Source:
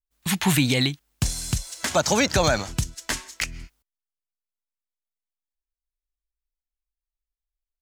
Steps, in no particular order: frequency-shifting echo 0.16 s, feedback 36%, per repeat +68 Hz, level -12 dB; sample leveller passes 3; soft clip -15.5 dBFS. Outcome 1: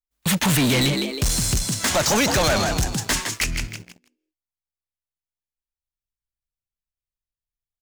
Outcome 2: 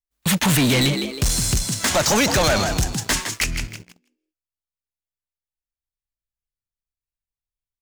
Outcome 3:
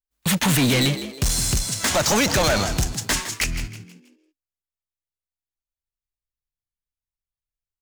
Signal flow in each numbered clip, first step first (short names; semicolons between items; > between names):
frequency-shifting echo > soft clip > sample leveller; soft clip > frequency-shifting echo > sample leveller; soft clip > sample leveller > frequency-shifting echo